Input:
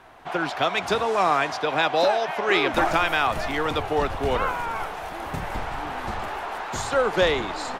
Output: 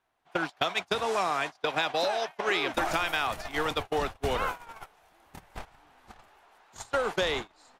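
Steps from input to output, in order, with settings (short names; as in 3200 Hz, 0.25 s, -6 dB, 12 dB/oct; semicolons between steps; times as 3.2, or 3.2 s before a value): gate -24 dBFS, range -35 dB; high shelf 3300 Hz +9.5 dB; compressor 4:1, threshold -34 dBFS, peak gain reduction 16.5 dB; gain +6 dB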